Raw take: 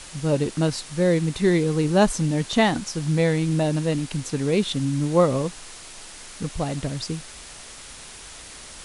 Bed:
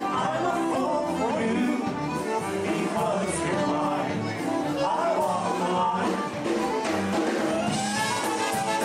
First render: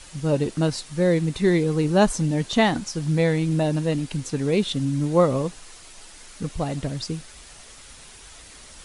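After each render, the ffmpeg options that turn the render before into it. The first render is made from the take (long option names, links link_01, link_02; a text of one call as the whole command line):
ffmpeg -i in.wav -af "afftdn=noise_reduction=6:noise_floor=-42" out.wav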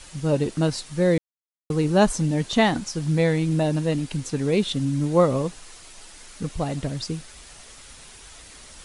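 ffmpeg -i in.wav -filter_complex "[0:a]asplit=3[link_01][link_02][link_03];[link_01]atrim=end=1.18,asetpts=PTS-STARTPTS,afade=type=out:start_time=1.176:duration=0.004:curve=hsin[link_04];[link_02]atrim=start=1.18:end=1.7,asetpts=PTS-STARTPTS,volume=0[link_05];[link_03]atrim=start=1.7,asetpts=PTS-STARTPTS,afade=type=in:duration=0.004:curve=hsin[link_06];[link_04][link_05][link_06]concat=n=3:v=0:a=1" out.wav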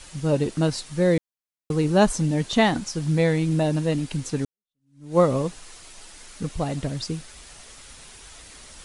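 ffmpeg -i in.wav -filter_complex "[0:a]asplit=2[link_01][link_02];[link_01]atrim=end=4.45,asetpts=PTS-STARTPTS,afade=type=out:start_time=4.446:duration=0.004:curve=hsin[link_03];[link_02]atrim=start=4.45,asetpts=PTS-STARTPTS,afade=type=in:duration=0.73:curve=exp[link_04];[link_03][link_04]concat=n=2:v=0:a=1" out.wav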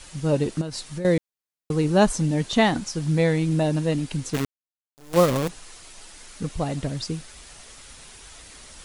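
ffmpeg -i in.wav -filter_complex "[0:a]asettb=1/sr,asplit=3[link_01][link_02][link_03];[link_01]atrim=end=0.614[link_04];[link_02]atrim=start=0.61:end=1.05,asetpts=PTS-STARTPTS,afade=type=in:duration=0.004:curve=qsin,afade=type=out:start_time=0.436:duration=0.004:curve=qsin,acompressor=threshold=-27dB:ratio=8:attack=3.2:release=140:knee=1:detection=peak[link_05];[link_03]atrim=start=1.046[link_06];[link_04][link_05]acrossfade=duration=0.004:curve1=hsin:curve2=qsin[link_07];[link_07][link_06]acrossfade=duration=0.004:curve1=qsin:curve2=hsin,asplit=3[link_08][link_09][link_10];[link_08]afade=type=out:start_time=4.33:duration=0.02[link_11];[link_09]acrusher=bits=5:dc=4:mix=0:aa=0.000001,afade=type=in:start_time=4.33:duration=0.02,afade=type=out:start_time=5.48:duration=0.02[link_12];[link_10]afade=type=in:start_time=5.48:duration=0.02[link_13];[link_11][link_12][link_13]amix=inputs=3:normalize=0" out.wav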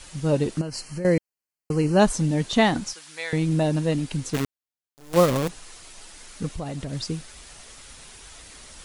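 ffmpeg -i in.wav -filter_complex "[0:a]asettb=1/sr,asplit=3[link_01][link_02][link_03];[link_01]atrim=end=0.594[link_04];[link_02]atrim=start=0.59:end=2,asetpts=PTS-STARTPTS,afade=type=in:duration=0.004:curve=qsin,afade=type=out:start_time=1.406:duration=0.004:curve=qsin,asuperstop=centerf=3600:order=20:qfactor=4.2[link_05];[link_03]atrim=start=1.996[link_06];[link_04][link_05]acrossfade=duration=0.004:curve1=hsin:curve2=qsin[link_07];[link_07][link_06]acrossfade=duration=0.004:curve1=qsin:curve2=hsin,asettb=1/sr,asplit=3[link_08][link_09][link_10];[link_08]atrim=end=2.934[link_11];[link_09]atrim=start=2.93:end=3.33,asetpts=PTS-STARTPTS,afade=type=in:duration=0.004:curve=qsin,afade=type=out:start_time=0.396:duration=0.004:curve=qsin,highpass=1300[link_12];[link_10]atrim=start=3.326[link_13];[link_11][link_12]acrossfade=duration=0.004:curve1=hsin:curve2=qsin[link_14];[link_14][link_13]acrossfade=duration=0.004:curve1=qsin:curve2=hsin,asettb=1/sr,asplit=3[link_15][link_16][link_17];[link_15]atrim=end=6.534[link_18];[link_16]atrim=start=6.53:end=6.93,asetpts=PTS-STARTPTS,afade=type=in:duration=0.004:curve=qsin,afade=type=out:start_time=0.396:duration=0.004:curve=qsin,acompressor=threshold=-28dB:ratio=4:attack=3.2:release=140:knee=1:detection=peak[link_19];[link_17]atrim=start=6.926[link_20];[link_18][link_19]acrossfade=duration=0.004:curve1=hsin:curve2=qsin[link_21];[link_21][link_20]acrossfade=duration=0.004:curve1=qsin:curve2=hsin" out.wav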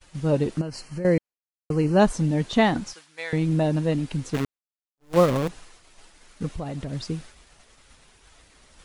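ffmpeg -i in.wav -af "agate=range=-33dB:threshold=-38dB:ratio=3:detection=peak,highshelf=frequency=4300:gain=-9" out.wav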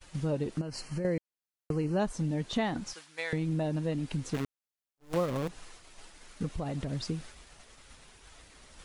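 ffmpeg -i in.wav -af "acompressor=threshold=-32dB:ratio=2.5" out.wav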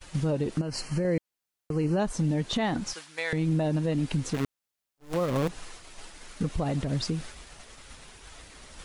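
ffmpeg -i in.wav -af "acontrast=64,alimiter=limit=-18.5dB:level=0:latency=1:release=102" out.wav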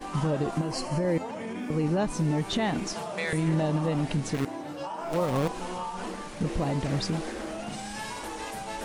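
ffmpeg -i in.wav -i bed.wav -filter_complex "[1:a]volume=-10.5dB[link_01];[0:a][link_01]amix=inputs=2:normalize=0" out.wav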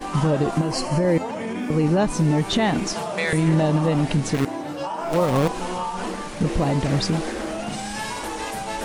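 ffmpeg -i in.wav -af "volume=7dB" out.wav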